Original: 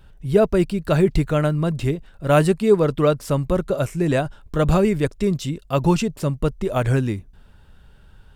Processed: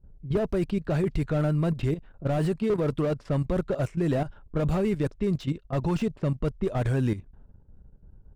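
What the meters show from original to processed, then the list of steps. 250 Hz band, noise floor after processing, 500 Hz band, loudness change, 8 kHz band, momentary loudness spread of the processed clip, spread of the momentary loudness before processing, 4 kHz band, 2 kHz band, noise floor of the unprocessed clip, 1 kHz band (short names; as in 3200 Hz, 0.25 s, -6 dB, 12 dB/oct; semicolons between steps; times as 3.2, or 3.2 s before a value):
-6.0 dB, -56 dBFS, -9.0 dB, -7.0 dB, under -10 dB, 4 LU, 7 LU, -10.5 dB, -10.0 dB, -49 dBFS, -10.0 dB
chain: level quantiser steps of 12 dB; low-pass opened by the level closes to 370 Hz, open at -20.5 dBFS; slew limiter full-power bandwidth 37 Hz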